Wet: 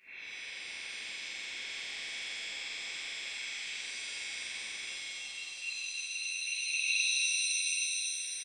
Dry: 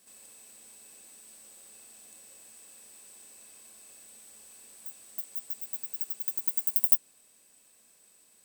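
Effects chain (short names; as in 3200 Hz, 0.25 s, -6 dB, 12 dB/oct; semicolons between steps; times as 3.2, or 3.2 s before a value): nonlinear frequency compression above 1400 Hz 4:1; 3.18–3.58 steep high-pass 1100 Hz; echo 0.819 s -7 dB; harmonic-percussive split harmonic -15 dB; auto swell 0.662 s; shimmer reverb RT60 3.1 s, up +7 st, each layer -2 dB, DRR -12 dB; gain -1.5 dB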